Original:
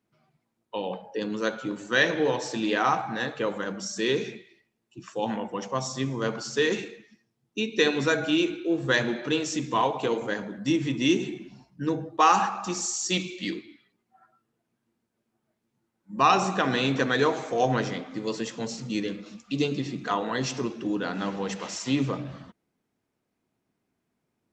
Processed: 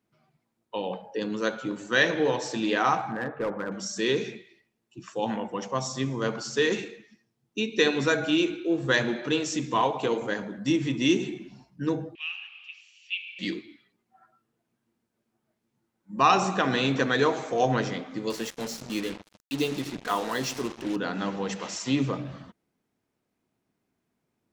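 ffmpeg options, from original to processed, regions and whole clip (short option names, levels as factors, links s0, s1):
-filter_complex "[0:a]asettb=1/sr,asplit=3[s0][s1][s2];[s0]atrim=end=3.114[s3];[s1]atrim=start=3.11:end=3.72,asetpts=PTS-STARTPTS,afade=t=in:d=0.004:c=qsin,afade=t=out:st=0.606:d=0.004:c=qsin,lowpass=f=1700:w=0.5412,lowpass=f=1700:w=1.3066,asoftclip=type=hard:threshold=0.0631[s4];[s2]atrim=start=3.716[s5];[s3][s4]acrossfade=d=0.004:c1=hsin:c2=qsin[s6];[s6][s5]acrossfade=d=0.004:c1=qsin:c2=hsin,asettb=1/sr,asplit=3[s7][s8][s9];[s7]atrim=end=12.154[s10];[s8]atrim=start=12.15:end=13.39,asetpts=PTS-STARTPTS,afade=t=in:d=0.004:c=qsin,afade=t=out:st=1.236:d=0.004:c=qsin,aeval=exprs='val(0)+0.5*0.0266*sgn(val(0))':c=same,asuperpass=centerf=2700:order=4:qfactor=4.5[s11];[s9]atrim=start=13.386[s12];[s10][s11]acrossfade=d=0.004:c1=hsin:c2=qsin[s13];[s13][s12]acrossfade=d=0.004:c1=qsin:c2=hsin,asettb=1/sr,asplit=3[s14][s15][s16];[s14]atrim=end=18.304[s17];[s15]atrim=start=18.3:end=20.96,asetpts=PTS-STARTPTS,afade=t=in:d=0.004:c=qsin,afade=t=out:st=2.656:d=0.004:c=qsin,lowshelf=f=140:g=-10,acrusher=bits=5:mix=0:aa=0.5[s18];[s16]atrim=start=20.956[s19];[s17][s18]acrossfade=d=0.004:c1=hsin:c2=qsin[s20];[s20][s19]acrossfade=d=0.004:c1=qsin:c2=hsin"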